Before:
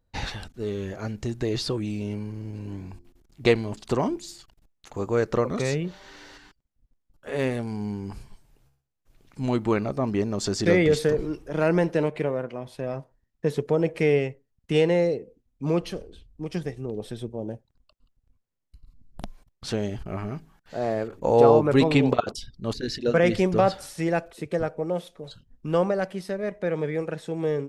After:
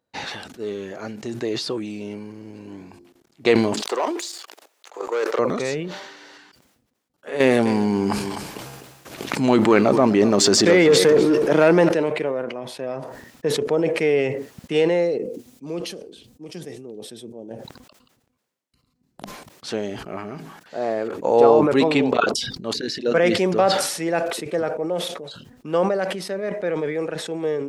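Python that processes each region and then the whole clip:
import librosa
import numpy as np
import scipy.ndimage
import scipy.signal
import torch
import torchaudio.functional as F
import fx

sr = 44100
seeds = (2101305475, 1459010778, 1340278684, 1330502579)

y = fx.chain(x, sr, fx.leveller(passes=2),
    fx.highpass(hz=410.0, slope=24),
    fx.level_steps(step_db=12), at=(3.82, 5.39))
y = fx.chain(y, sr, fx.leveller(passes=1),
    fx.echo_single(ms=252, db=-18.5),
    fx.env_flatten(amount_pct=70), at=(7.4, 11.89))
y = fx.chain(y, sr, fx.highpass(hz=210.0, slope=6),
    fx.peak_eq(hz=1200.0, db=-11.5, octaves=3.0), at=(15.18, 17.51))
y = scipy.signal.sosfilt(scipy.signal.butter(2, 250.0, 'highpass', fs=sr, output='sos'), y)
y = fx.high_shelf(y, sr, hz=9100.0, db=-4.5)
y = fx.sustainer(y, sr, db_per_s=49.0)
y = y * 10.0 ** (2.5 / 20.0)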